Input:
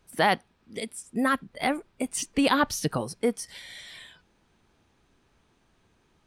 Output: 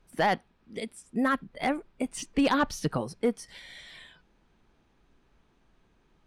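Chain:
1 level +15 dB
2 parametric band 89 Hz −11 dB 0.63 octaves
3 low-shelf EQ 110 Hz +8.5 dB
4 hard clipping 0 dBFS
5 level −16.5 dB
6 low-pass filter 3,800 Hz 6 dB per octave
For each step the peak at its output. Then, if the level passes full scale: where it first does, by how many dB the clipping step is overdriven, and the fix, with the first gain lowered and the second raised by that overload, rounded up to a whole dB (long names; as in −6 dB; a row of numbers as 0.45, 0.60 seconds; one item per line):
+6.5, +6.5, +7.0, 0.0, −16.5, −16.5 dBFS
step 1, 7.0 dB
step 1 +8 dB, step 5 −9.5 dB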